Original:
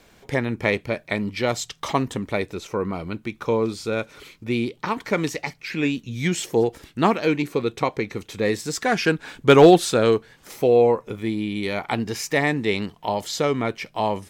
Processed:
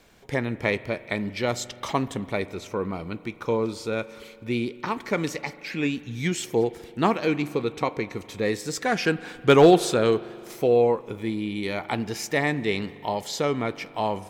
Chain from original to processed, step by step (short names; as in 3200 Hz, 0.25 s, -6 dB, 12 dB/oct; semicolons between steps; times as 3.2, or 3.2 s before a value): spring tank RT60 2.5 s, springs 41 ms, chirp 50 ms, DRR 16 dB; gain -3 dB